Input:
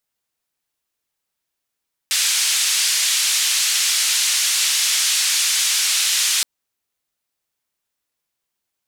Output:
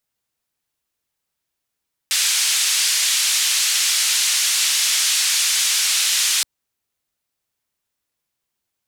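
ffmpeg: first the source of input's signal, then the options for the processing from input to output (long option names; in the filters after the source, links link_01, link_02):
-f lavfi -i "anoisesrc=color=white:duration=4.32:sample_rate=44100:seed=1,highpass=frequency=2500,lowpass=frequency=8000,volume=-7.7dB"
-af "equalizer=frequency=81:width_type=o:width=2.9:gain=5"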